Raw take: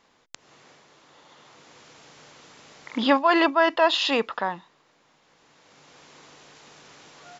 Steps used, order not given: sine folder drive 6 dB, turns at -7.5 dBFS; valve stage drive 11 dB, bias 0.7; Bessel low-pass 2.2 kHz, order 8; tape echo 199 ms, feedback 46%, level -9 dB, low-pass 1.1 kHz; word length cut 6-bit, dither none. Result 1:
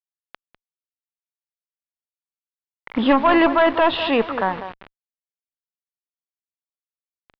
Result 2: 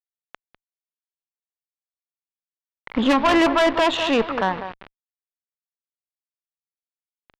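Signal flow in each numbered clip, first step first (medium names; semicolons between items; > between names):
tape echo > word length cut > valve stage > sine folder > Bessel low-pass; tape echo > word length cut > Bessel low-pass > sine folder > valve stage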